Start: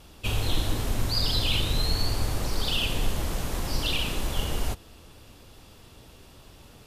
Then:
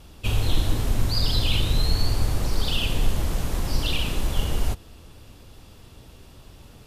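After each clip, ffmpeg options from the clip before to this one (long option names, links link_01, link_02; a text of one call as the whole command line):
ffmpeg -i in.wav -af "lowshelf=frequency=220:gain=5.5" out.wav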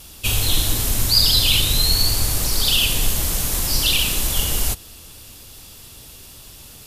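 ffmpeg -i in.wav -af "crystalizer=i=6:c=0" out.wav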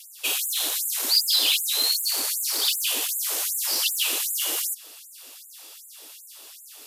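ffmpeg -i in.wav -af "acontrast=69,afftfilt=real='re*gte(b*sr/1024,250*pow(7000/250,0.5+0.5*sin(2*PI*2.6*pts/sr)))':imag='im*gte(b*sr/1024,250*pow(7000/250,0.5+0.5*sin(2*PI*2.6*pts/sr)))':win_size=1024:overlap=0.75,volume=-8.5dB" out.wav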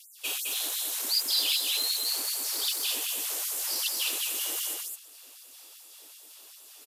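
ffmpeg -i in.wav -af "aecho=1:1:212:0.708,volume=-7dB" out.wav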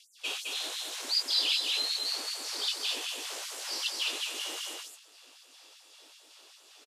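ffmpeg -i in.wav -filter_complex "[0:a]highpass=230,lowpass=5300,asplit=2[link_01][link_02];[link_02]adelay=19,volume=-9dB[link_03];[link_01][link_03]amix=inputs=2:normalize=0" out.wav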